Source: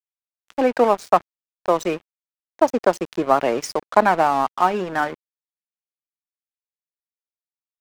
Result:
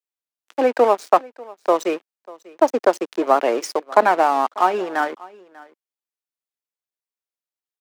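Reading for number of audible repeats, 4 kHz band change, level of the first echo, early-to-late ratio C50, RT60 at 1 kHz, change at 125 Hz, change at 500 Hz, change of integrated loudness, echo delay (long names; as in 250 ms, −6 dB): 1, 0.0 dB, −22.0 dB, no reverb audible, no reverb audible, below −10 dB, +1.5 dB, +1.0 dB, 593 ms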